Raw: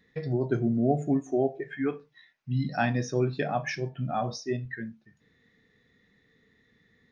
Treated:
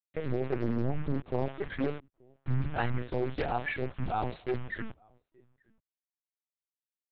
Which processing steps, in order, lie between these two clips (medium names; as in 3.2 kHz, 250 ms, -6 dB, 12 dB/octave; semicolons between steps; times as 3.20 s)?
0.64–2.98 s: peaking EQ 140 Hz +11.5 dB 0.54 oct; compression 12:1, threshold -25 dBFS, peak gain reduction 11 dB; bit crusher 7-bit; echo from a far wall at 150 m, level -30 dB; LPC vocoder at 8 kHz pitch kept; loudspeaker Doppler distortion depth 0.77 ms